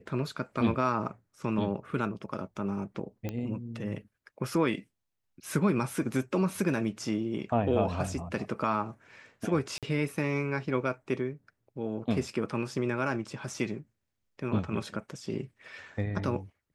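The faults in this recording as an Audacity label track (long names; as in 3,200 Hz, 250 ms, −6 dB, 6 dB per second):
3.290000	3.290000	click −21 dBFS
9.780000	9.830000	drop-out 47 ms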